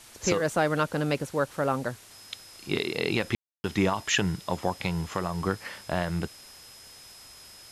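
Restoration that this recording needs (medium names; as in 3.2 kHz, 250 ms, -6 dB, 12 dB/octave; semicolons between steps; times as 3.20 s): band-stop 5.1 kHz, Q 30; room tone fill 3.35–3.64 s; noise reduction 24 dB, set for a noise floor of -50 dBFS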